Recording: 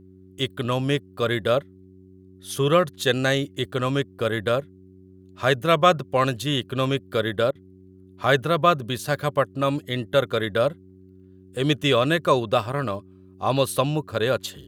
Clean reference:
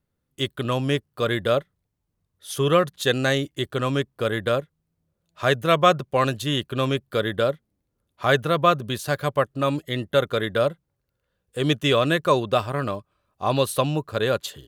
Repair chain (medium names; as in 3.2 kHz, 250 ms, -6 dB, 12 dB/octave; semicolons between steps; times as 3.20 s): de-hum 93.7 Hz, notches 4; interpolate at 7.51 s, 41 ms